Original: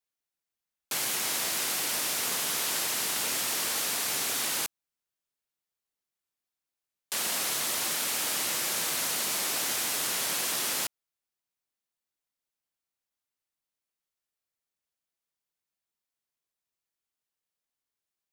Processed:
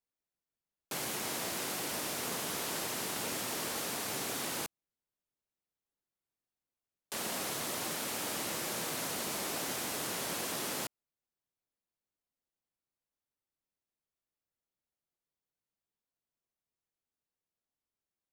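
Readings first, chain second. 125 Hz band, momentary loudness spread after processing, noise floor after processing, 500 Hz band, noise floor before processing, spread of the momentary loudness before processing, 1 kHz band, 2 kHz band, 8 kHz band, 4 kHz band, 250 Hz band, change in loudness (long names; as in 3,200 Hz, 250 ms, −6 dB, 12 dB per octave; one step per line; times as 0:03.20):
+2.5 dB, 2 LU, below −85 dBFS, 0.0 dB, below −85 dBFS, 2 LU, −3.0 dB, −6.5 dB, −9.0 dB, −8.5 dB, +2.0 dB, −8.0 dB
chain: tilt shelving filter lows +6 dB
level −3 dB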